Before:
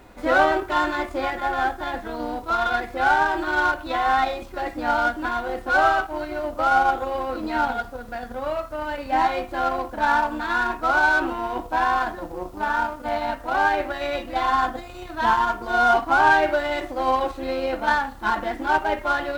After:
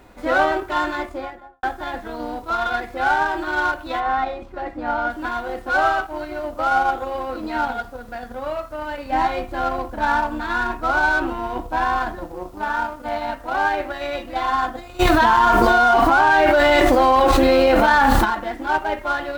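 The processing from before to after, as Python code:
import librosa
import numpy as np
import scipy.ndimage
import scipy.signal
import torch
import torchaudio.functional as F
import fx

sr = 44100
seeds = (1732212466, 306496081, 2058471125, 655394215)

y = fx.studio_fade_out(x, sr, start_s=0.94, length_s=0.69)
y = fx.lowpass(y, sr, hz=1600.0, slope=6, at=(3.99, 5.09), fade=0.02)
y = fx.low_shelf(y, sr, hz=190.0, db=7.5, at=(9.1, 12.24))
y = fx.env_flatten(y, sr, amount_pct=100, at=(14.99, 18.24), fade=0.02)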